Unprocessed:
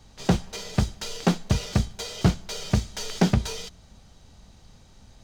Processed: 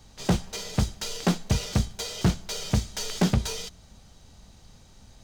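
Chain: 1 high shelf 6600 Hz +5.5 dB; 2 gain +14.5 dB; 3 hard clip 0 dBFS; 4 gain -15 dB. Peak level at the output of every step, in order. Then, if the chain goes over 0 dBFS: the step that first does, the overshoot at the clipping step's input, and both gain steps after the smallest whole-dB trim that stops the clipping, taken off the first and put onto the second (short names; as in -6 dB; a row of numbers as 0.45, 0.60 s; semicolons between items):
-6.0, +8.5, 0.0, -15.0 dBFS; step 2, 8.5 dB; step 2 +5.5 dB, step 4 -6 dB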